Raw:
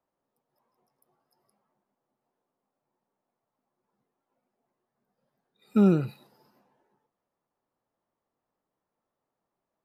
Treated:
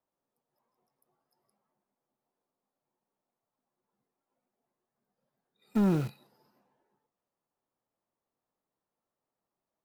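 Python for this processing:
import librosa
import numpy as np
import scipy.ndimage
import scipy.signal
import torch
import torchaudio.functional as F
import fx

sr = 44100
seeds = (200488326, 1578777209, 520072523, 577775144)

p1 = fx.quant_dither(x, sr, seeds[0], bits=6, dither='none')
p2 = x + F.gain(torch.from_numpy(p1), -4.0).numpy()
p3 = 10.0 ** (-15.5 / 20.0) * np.tanh(p2 / 10.0 ** (-15.5 / 20.0))
y = F.gain(torch.from_numpy(p3), -5.0).numpy()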